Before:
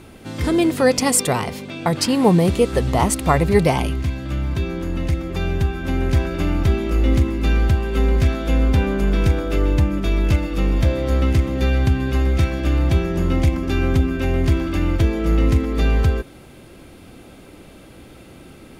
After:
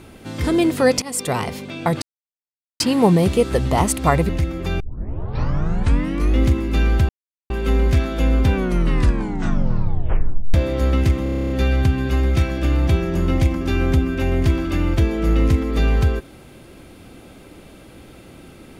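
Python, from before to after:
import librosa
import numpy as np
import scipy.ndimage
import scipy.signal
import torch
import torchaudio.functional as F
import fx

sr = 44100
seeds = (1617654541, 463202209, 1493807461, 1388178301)

y = fx.edit(x, sr, fx.fade_in_from(start_s=1.02, length_s=0.39, floor_db=-22.0),
    fx.insert_silence(at_s=2.02, length_s=0.78),
    fx.cut(start_s=3.51, length_s=1.48),
    fx.tape_start(start_s=5.5, length_s=1.59),
    fx.insert_silence(at_s=7.79, length_s=0.41),
    fx.tape_stop(start_s=8.83, length_s=2.0),
    fx.stutter(start_s=11.52, slice_s=0.03, count=10), tone=tone)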